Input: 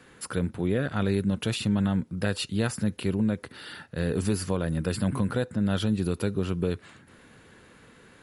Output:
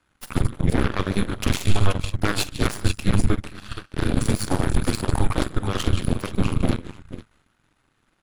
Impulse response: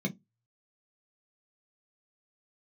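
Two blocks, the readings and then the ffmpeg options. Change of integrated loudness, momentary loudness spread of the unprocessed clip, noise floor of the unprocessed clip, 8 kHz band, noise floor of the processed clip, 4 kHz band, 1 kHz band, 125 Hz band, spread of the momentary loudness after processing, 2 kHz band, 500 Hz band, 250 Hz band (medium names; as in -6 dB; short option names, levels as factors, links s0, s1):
+3.5 dB, 5 LU, -55 dBFS, +6.0 dB, -68 dBFS, +5.5 dB, +8.5 dB, +5.0 dB, 8 LU, +5.5 dB, +0.5 dB, +1.0 dB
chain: -af "aecho=1:1:45|149|220|224|479:0.422|0.251|0.106|0.1|0.355,afreqshift=-200,aeval=exprs='0.224*(cos(1*acos(clip(val(0)/0.224,-1,1)))-cos(1*PI/2))+0.0562*(cos(6*acos(clip(val(0)/0.224,-1,1)))-cos(6*PI/2))+0.0282*(cos(7*acos(clip(val(0)/0.224,-1,1)))-cos(7*PI/2))':c=same,volume=1.5"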